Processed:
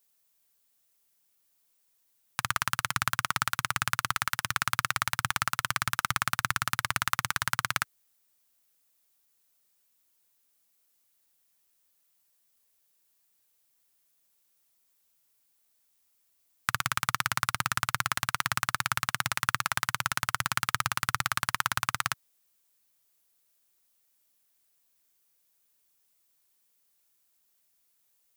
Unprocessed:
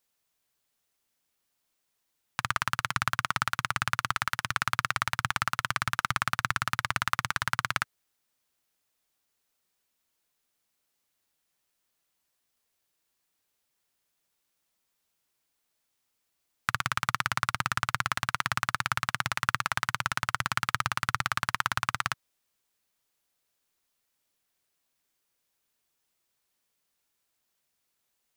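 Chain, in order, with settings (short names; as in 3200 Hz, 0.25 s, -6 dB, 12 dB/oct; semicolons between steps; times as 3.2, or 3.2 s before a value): high shelf 7200 Hz +11.5 dB; gain -1 dB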